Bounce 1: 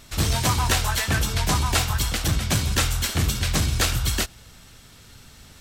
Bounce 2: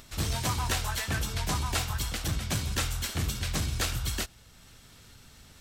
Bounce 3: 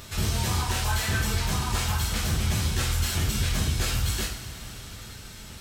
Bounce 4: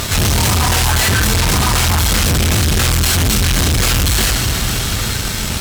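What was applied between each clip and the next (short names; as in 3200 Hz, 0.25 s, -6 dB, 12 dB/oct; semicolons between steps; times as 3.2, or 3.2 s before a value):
upward compressor, threshold -39 dBFS; gain -8 dB
limiter -28.5 dBFS, peak gain reduction 11 dB; two-slope reverb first 0.45 s, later 4.9 s, from -18 dB, DRR -4.5 dB; gain +4.5 dB
fuzz box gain 39 dB, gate -48 dBFS; gain +1 dB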